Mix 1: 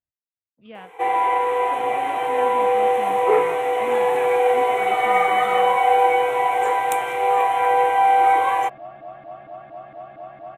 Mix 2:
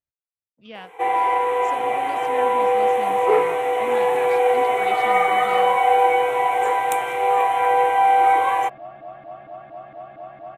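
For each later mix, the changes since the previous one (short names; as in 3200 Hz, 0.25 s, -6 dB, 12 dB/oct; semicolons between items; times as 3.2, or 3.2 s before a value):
speech: remove air absorption 360 m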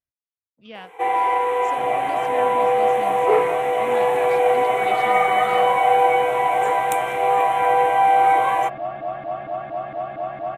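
second sound +9.5 dB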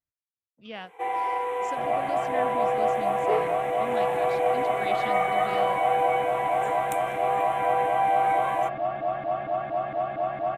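first sound -8.0 dB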